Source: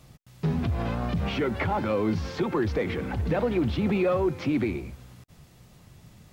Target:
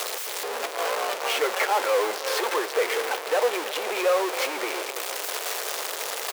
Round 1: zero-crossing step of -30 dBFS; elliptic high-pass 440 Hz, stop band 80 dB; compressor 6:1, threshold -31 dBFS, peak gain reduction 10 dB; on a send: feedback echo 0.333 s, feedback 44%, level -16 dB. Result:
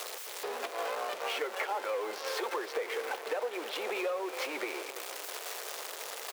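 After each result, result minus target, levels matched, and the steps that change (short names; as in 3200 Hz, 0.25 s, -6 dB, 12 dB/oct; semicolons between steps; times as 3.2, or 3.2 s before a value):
compressor: peak gain reduction +10 dB; zero-crossing step: distortion -7 dB
remove: compressor 6:1, threshold -31 dBFS, peak gain reduction 10 dB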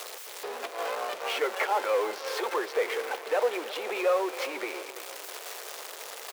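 zero-crossing step: distortion -7 dB
change: zero-crossing step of -19.5 dBFS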